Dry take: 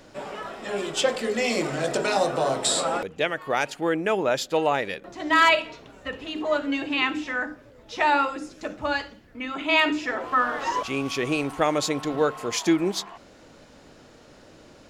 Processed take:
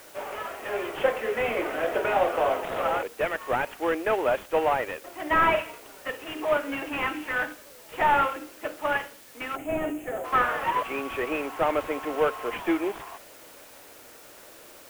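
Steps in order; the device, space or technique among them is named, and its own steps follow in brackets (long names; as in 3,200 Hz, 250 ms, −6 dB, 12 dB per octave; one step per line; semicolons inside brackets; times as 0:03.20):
high-pass filter 240 Hz 24 dB per octave
army field radio (band-pass filter 400–3,200 Hz; variable-slope delta modulation 16 kbit/s; white noise bed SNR 23 dB)
gain on a spectral selection 0:09.56–0:10.24, 820–6,200 Hz −12 dB
level +1.5 dB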